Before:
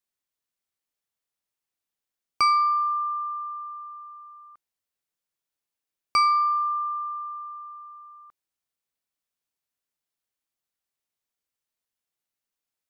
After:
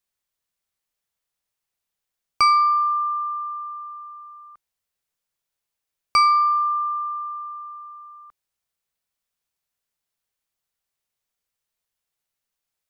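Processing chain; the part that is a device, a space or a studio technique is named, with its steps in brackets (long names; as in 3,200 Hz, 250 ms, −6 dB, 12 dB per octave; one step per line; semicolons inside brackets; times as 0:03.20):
low shelf boost with a cut just above (low-shelf EQ 72 Hz +6 dB; parametric band 290 Hz −6 dB 0.58 octaves)
level +4 dB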